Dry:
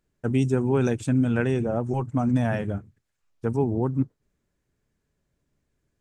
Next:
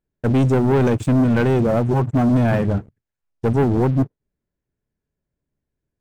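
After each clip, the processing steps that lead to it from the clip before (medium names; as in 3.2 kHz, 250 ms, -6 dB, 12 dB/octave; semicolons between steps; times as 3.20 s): treble shelf 2.3 kHz -9.5 dB; band-stop 1.2 kHz; waveshaping leveller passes 3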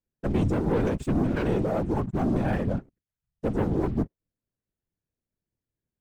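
whisper effect; trim -8.5 dB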